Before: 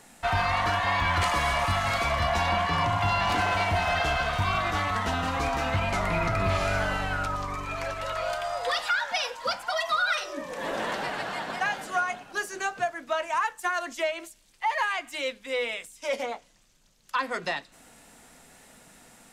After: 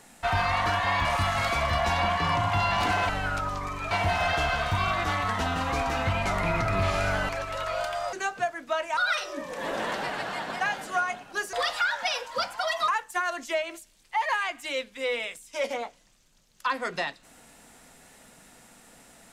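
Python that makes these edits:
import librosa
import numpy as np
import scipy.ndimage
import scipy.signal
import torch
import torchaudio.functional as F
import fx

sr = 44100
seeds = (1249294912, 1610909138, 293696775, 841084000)

y = fx.edit(x, sr, fx.cut(start_s=1.05, length_s=0.49),
    fx.move(start_s=6.96, length_s=0.82, to_s=3.58),
    fx.swap(start_s=8.62, length_s=1.35, other_s=12.53, other_length_s=0.84), tone=tone)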